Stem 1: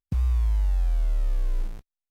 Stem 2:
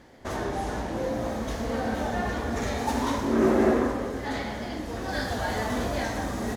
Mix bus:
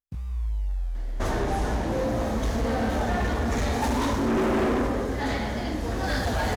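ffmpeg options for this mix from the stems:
-filter_complex "[0:a]flanger=delay=19:depth=2.3:speed=2.1,volume=0.562[s0];[1:a]lowshelf=f=83:g=9.5,asoftclip=type=hard:threshold=0.0631,adelay=950,volume=1.41[s1];[s0][s1]amix=inputs=2:normalize=0"

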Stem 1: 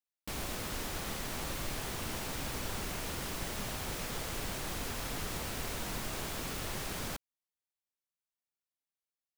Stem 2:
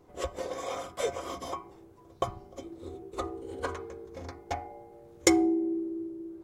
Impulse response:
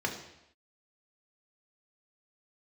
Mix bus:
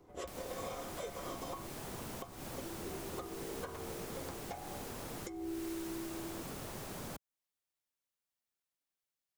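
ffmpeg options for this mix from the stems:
-filter_complex "[0:a]acrossover=split=1200|6100[s0][s1][s2];[s0]acompressor=threshold=0.00794:ratio=4[s3];[s1]acompressor=threshold=0.00158:ratio=4[s4];[s2]acompressor=threshold=0.00316:ratio=4[s5];[s3][s4][s5]amix=inputs=3:normalize=0,volume=1.19[s6];[1:a]volume=0.75[s7];[s6][s7]amix=inputs=2:normalize=0,acrossover=split=97|1000[s8][s9][s10];[s8]acompressor=threshold=0.00178:ratio=4[s11];[s9]acompressor=threshold=0.01:ratio=4[s12];[s10]acompressor=threshold=0.00501:ratio=4[s13];[s11][s12][s13]amix=inputs=3:normalize=0,alimiter=level_in=2.24:limit=0.0631:level=0:latency=1:release=223,volume=0.447"

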